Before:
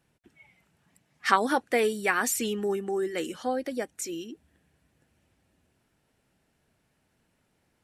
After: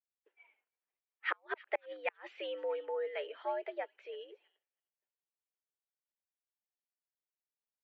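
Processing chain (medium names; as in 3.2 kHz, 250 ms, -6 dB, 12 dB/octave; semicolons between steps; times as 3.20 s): inverted gate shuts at -13 dBFS, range -40 dB; on a send: feedback echo behind a high-pass 320 ms, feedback 37%, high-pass 2.4 kHz, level -16 dB; on the sum: mistuned SSB +98 Hz 340–3000 Hz; expander -58 dBFS; trim -6.5 dB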